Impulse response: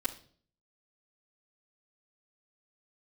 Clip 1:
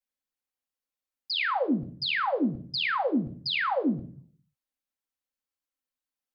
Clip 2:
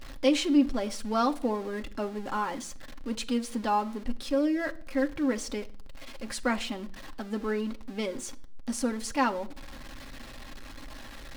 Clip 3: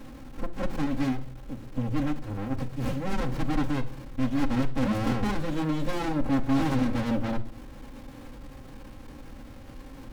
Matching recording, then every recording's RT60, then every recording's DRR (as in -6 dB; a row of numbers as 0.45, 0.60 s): 1; not exponential, not exponential, not exponential; -9.0, 4.5, -3.5 dB